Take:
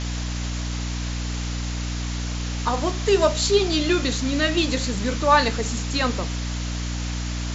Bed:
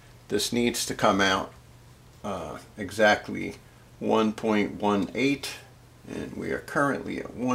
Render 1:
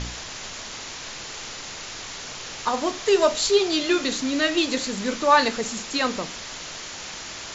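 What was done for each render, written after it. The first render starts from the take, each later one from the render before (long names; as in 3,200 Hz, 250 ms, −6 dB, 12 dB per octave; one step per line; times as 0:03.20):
hum removal 60 Hz, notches 5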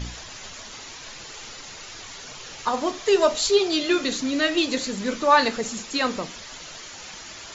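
broadband denoise 8 dB, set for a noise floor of −37 dBFS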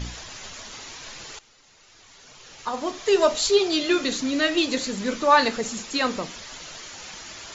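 0:01.39–0:03.20: fade in quadratic, from −17.5 dB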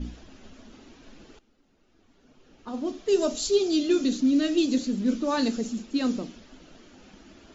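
low-pass that shuts in the quiet parts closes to 1,800 Hz, open at −15 dBFS
octave-band graphic EQ 125/250/500/1,000/2,000/4,000 Hz −10/+9/−5/−12/−12/−5 dB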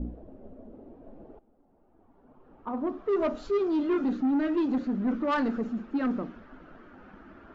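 low-pass filter sweep 570 Hz → 1,400 Hz, 0:00.74–0:03.50
soft clipping −21.5 dBFS, distortion −12 dB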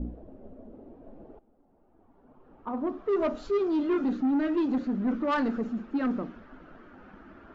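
no processing that can be heard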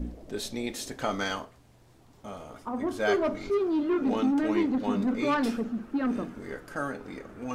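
mix in bed −8.5 dB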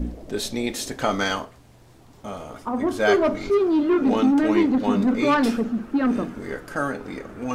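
level +7 dB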